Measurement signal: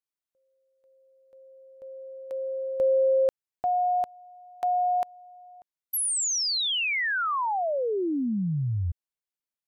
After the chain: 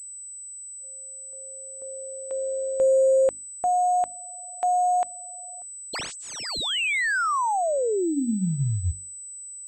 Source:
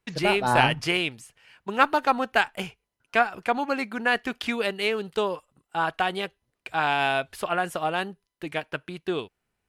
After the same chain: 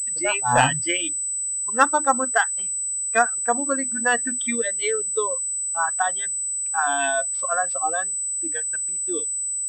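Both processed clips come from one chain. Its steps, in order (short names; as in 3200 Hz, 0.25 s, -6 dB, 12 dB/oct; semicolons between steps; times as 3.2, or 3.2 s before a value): notches 50/100/150/200/250/300 Hz; spectral noise reduction 22 dB; pulse-width modulation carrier 8000 Hz; gain +3 dB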